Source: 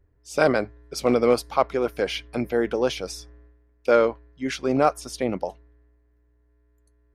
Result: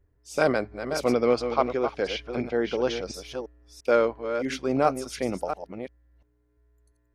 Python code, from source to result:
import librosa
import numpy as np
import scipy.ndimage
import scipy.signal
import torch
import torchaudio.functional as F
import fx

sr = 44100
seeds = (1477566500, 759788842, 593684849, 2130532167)

y = fx.reverse_delay(x, sr, ms=346, wet_db=-8)
y = fx.lowpass(y, sr, hz=6500.0, slope=24, at=(1.13, 3.14))
y = y * 10.0 ** (-3.0 / 20.0)